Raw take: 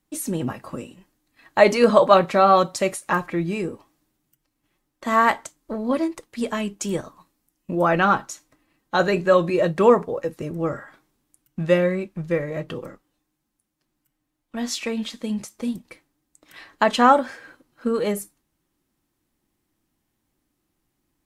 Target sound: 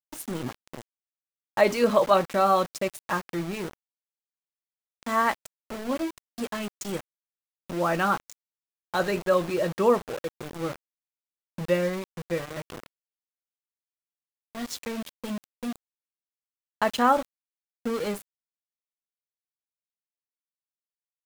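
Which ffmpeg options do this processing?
-af "aeval=exprs='val(0)*gte(abs(val(0)),0.0473)':c=same,volume=-6dB"

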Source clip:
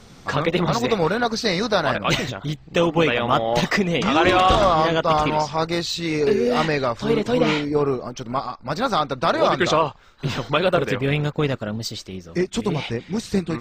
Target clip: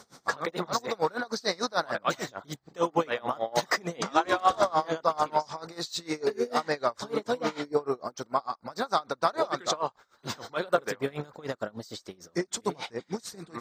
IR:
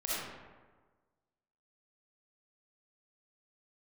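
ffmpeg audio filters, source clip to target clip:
-filter_complex "[0:a]highpass=f=780:p=1,equalizer=f=2.7k:w=1.6:g=-14,asplit=2[a][b];[b]acompressor=threshold=-30dB:ratio=6,volume=-1.5dB[c];[a][c]amix=inputs=2:normalize=0,aeval=exprs='val(0)*pow(10,-25*(0.5-0.5*cos(2*PI*6.7*n/s))/20)':c=same"

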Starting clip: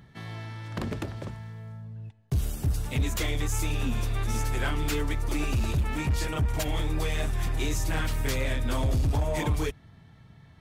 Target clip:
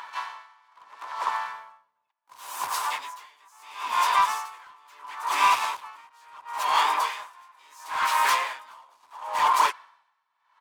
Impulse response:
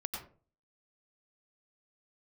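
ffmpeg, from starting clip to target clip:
-filter_complex "[0:a]asplit=2[a][b];[b]highpass=f=720:p=1,volume=18dB,asoftclip=type=tanh:threshold=-20dB[c];[a][c]amix=inputs=2:normalize=0,lowpass=f=6.8k:p=1,volume=-6dB,asplit=4[d][e][f][g];[e]asetrate=37084,aresample=44100,atempo=1.18921,volume=-5dB[h];[f]asetrate=58866,aresample=44100,atempo=0.749154,volume=-6dB[i];[g]asetrate=88200,aresample=44100,atempo=0.5,volume=-14dB[j];[d][h][i][j]amix=inputs=4:normalize=0,highpass=f=1k:t=q:w=10,asoftclip=type=hard:threshold=-13dB,aeval=exprs='val(0)*pow(10,-34*(0.5-0.5*cos(2*PI*0.73*n/s))/20)':c=same,volume=1dB"

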